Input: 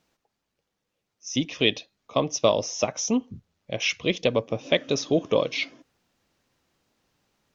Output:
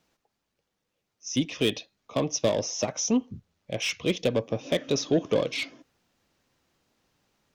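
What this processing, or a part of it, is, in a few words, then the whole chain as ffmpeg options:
one-band saturation: -filter_complex "[0:a]acrossover=split=500|4400[a][b][c];[b]asoftclip=type=tanh:threshold=-27.5dB[d];[a][d][c]amix=inputs=3:normalize=0"

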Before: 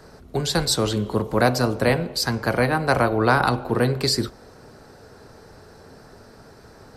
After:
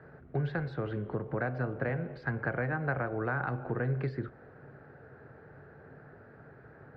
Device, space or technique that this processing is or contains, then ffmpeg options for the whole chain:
bass amplifier: -af "acompressor=threshold=-24dB:ratio=4,highpass=72,equalizer=f=140:t=q:w=4:g=9,equalizer=f=210:t=q:w=4:g=-4,equalizer=f=1k:t=q:w=4:g=-6,equalizer=f=1.6k:t=q:w=4:g=6,lowpass=f=2.1k:w=0.5412,lowpass=f=2.1k:w=1.3066,volume=-6.5dB"

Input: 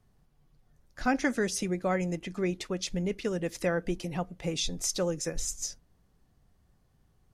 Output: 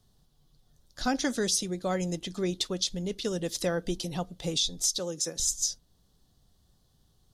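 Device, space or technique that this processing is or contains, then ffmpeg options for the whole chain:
over-bright horn tweeter: -filter_complex "[0:a]asettb=1/sr,asplit=3[a][b][c];[a]atrim=end=4.994[d];[b]atrim=start=4.99:end=5.4,asetpts=PTS-STARTPTS,afade=t=in:d=0.004:c=qsin,afade=t=out:st=0.406:d=0.004:c=qsin,highpass=170[e];[c]atrim=start=5.396[f];[d][e]acrossfade=d=0.004:c1=hsin:c2=qsin[g];[g][f]acrossfade=d=0.004:c1=qsin:c2=hsin,highshelf=f=2.9k:t=q:w=3:g=7,alimiter=limit=-16dB:level=0:latency=1:release=452"

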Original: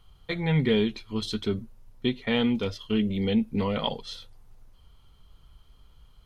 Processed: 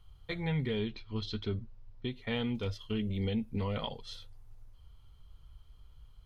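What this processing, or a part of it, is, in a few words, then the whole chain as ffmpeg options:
car stereo with a boomy subwoofer: -filter_complex "[0:a]lowshelf=f=140:t=q:w=1.5:g=6,alimiter=limit=-17.5dB:level=0:latency=1:release=277,asettb=1/sr,asplit=3[a][b][c];[a]atrim=end=0.794[d];[b]atrim=start=0.79:end=2.1,asetpts=PTS-STARTPTS,afade=t=in:d=0.004:c=qsin,afade=t=out:st=1.306:d=0.004:c=qsin,lowpass=f=5.2k:w=0.5412,lowpass=f=5.2k:w=1.3066[e];[c]atrim=start=2.096[f];[d][e]acrossfade=d=0.004:c1=hsin:c2=qsin[g];[g][f]acrossfade=d=0.004:c1=qsin:c2=hsin,volume=-6.5dB"

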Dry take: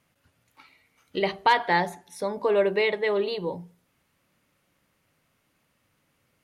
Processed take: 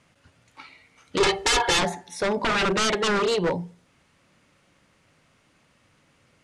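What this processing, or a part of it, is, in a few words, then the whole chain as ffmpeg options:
synthesiser wavefolder: -filter_complex "[0:a]aeval=exprs='0.0501*(abs(mod(val(0)/0.0501+3,4)-2)-1)':c=same,lowpass=f=8.9k:w=0.5412,lowpass=f=8.9k:w=1.3066,asettb=1/sr,asplit=3[a][b][c];[a]atrim=end=1.204[d];[b]atrim=start=1.2:end=1.79,asetpts=PTS-STARTPTS,afade=t=in:d=0.004:c=qsin,afade=t=out:st=0.586:d=0.004:c=qsin,aecho=1:1:2.3:0.98,atrim=end_sample=26019[e];[c]atrim=start=1.786[f];[d][e]acrossfade=d=0.004:c1=hsin:c2=qsin[g];[g][f]acrossfade=d=0.004:c1=qsin:c2=hsin,volume=8.5dB"

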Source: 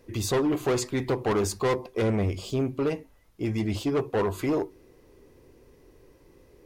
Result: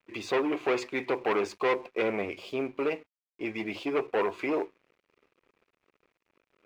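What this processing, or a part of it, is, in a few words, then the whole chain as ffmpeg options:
pocket radio on a weak battery: -af "highpass=360,lowpass=3.3k,aeval=exprs='sgn(val(0))*max(abs(val(0))-0.00158,0)':c=same,equalizer=f=2.4k:t=o:w=0.38:g=9.5"

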